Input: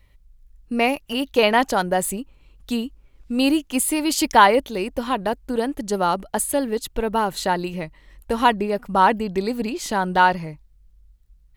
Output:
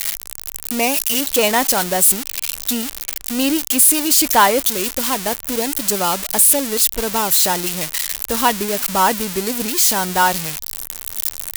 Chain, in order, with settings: zero-crossing glitches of -8 dBFS

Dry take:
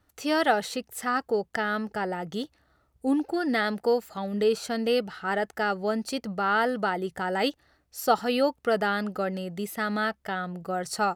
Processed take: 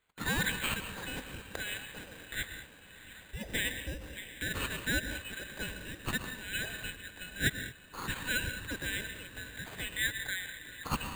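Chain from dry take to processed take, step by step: four frequency bands reordered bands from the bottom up 4321; 9.96–10.84 s: resonant high shelf 2.7 kHz -13 dB, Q 3; echo that smears into a reverb 682 ms, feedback 62%, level -15 dB; reverberation, pre-delay 98 ms, DRR 8 dB; careless resampling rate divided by 8×, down filtered, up hold; 6.95–8.34 s: upward expansion 1.5:1, over -35 dBFS; trim +7 dB

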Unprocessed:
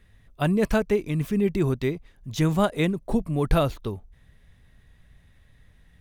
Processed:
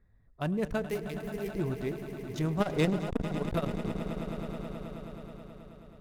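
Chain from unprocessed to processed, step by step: local Wiener filter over 15 samples; 0.88–1.52 s: RIAA curve recording; 2.60–3.25 s: waveshaping leveller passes 3; echo with a slow build-up 107 ms, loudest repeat 5, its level -14 dB; on a send at -21 dB: reverberation RT60 0.45 s, pre-delay 3 ms; on the sum: transformer saturation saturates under 230 Hz; trim -8.5 dB

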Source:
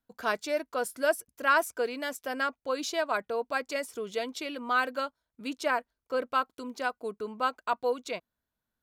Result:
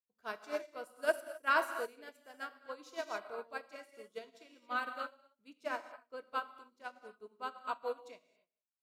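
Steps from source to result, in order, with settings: echo from a far wall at 31 m, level -23 dB; gated-style reverb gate 300 ms flat, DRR 2 dB; upward expansion 2.5:1, over -39 dBFS; trim -4 dB

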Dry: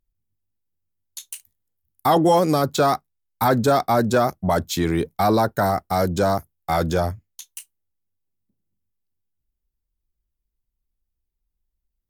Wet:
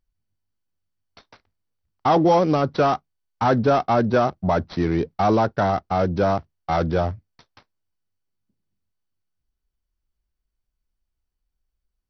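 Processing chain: median filter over 15 samples; MP2 48 kbps 48 kHz

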